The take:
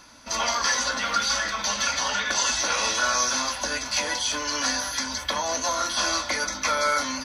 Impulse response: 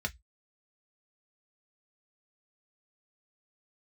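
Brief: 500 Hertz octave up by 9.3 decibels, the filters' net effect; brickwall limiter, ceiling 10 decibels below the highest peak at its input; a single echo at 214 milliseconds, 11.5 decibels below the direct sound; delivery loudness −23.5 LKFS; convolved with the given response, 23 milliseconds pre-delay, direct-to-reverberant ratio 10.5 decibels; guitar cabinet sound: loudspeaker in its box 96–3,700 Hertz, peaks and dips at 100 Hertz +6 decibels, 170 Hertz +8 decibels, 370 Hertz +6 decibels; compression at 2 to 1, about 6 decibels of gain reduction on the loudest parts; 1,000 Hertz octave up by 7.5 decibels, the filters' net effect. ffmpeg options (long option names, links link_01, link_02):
-filter_complex "[0:a]equalizer=frequency=500:width_type=o:gain=8,equalizer=frequency=1000:width_type=o:gain=7.5,acompressor=threshold=-25dB:ratio=2,alimiter=limit=-20dB:level=0:latency=1,aecho=1:1:214:0.266,asplit=2[link_01][link_02];[1:a]atrim=start_sample=2205,adelay=23[link_03];[link_02][link_03]afir=irnorm=-1:irlink=0,volume=-14.5dB[link_04];[link_01][link_04]amix=inputs=2:normalize=0,highpass=96,equalizer=frequency=100:width_type=q:width=4:gain=6,equalizer=frequency=170:width_type=q:width=4:gain=8,equalizer=frequency=370:width_type=q:width=4:gain=6,lowpass=frequency=3700:width=0.5412,lowpass=frequency=3700:width=1.3066,volume=5dB"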